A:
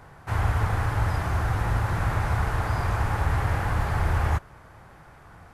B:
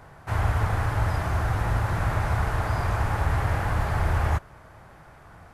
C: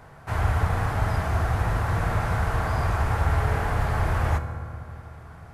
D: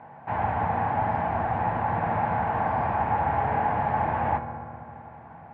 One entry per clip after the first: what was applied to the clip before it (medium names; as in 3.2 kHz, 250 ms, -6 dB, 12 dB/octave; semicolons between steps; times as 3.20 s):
peaking EQ 630 Hz +4 dB 0.2 oct
reverberation RT60 2.6 s, pre-delay 3 ms, DRR 6.5 dB
cabinet simulation 180–2300 Hz, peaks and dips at 220 Hz +5 dB, 400 Hz -7 dB, 840 Hz +10 dB, 1.3 kHz -10 dB, 2 kHz -3 dB; trim +1.5 dB